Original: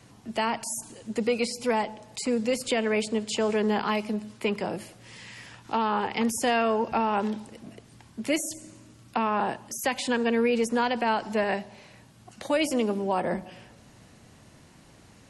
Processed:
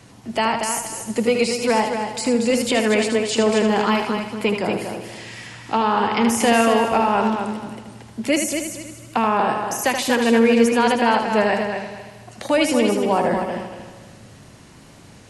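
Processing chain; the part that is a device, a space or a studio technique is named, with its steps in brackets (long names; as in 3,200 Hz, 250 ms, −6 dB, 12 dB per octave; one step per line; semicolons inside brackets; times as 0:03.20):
multi-head tape echo (echo machine with several playback heads 78 ms, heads first and third, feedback 45%, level −7 dB; tape wow and flutter 18 cents)
level +6.5 dB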